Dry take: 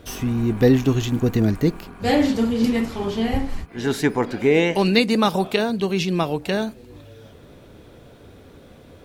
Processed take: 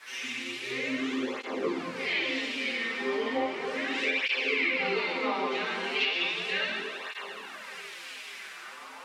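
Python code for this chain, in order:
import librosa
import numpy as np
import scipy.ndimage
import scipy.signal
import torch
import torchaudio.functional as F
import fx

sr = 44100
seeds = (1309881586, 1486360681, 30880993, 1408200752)

p1 = scipy.signal.sosfilt(scipy.signal.butter(2, 250.0, 'highpass', fs=sr, output='sos'), x)
p2 = fx.echo_pitch(p1, sr, ms=162, semitones=2, count=3, db_per_echo=-6.0)
p3 = fx.band_shelf(p2, sr, hz=1000.0, db=-12.5, octaves=1.7)
p4 = fx.rider(p3, sr, range_db=10, speed_s=0.5)
p5 = p3 + (p4 * librosa.db_to_amplitude(3.0))
p6 = fx.leveller(p5, sr, passes=1)
p7 = fx.resonator_bank(p6, sr, root=41, chord='fifth', decay_s=0.22)
p8 = fx.quant_dither(p7, sr, seeds[0], bits=6, dither='triangular')
p9 = fx.filter_lfo_bandpass(p8, sr, shape='sine', hz=0.53, low_hz=960.0, high_hz=2700.0, q=2.4)
p10 = fx.rev_plate(p9, sr, seeds[1], rt60_s=2.1, hf_ratio=0.75, predelay_ms=0, drr_db=-7.5)
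p11 = fx.env_lowpass_down(p10, sr, base_hz=750.0, full_db=-14.0)
p12 = p11 + fx.echo_diffused(p11, sr, ms=565, feedback_pct=42, wet_db=-11.0, dry=0)
y = fx.flanger_cancel(p12, sr, hz=0.35, depth_ms=7.5)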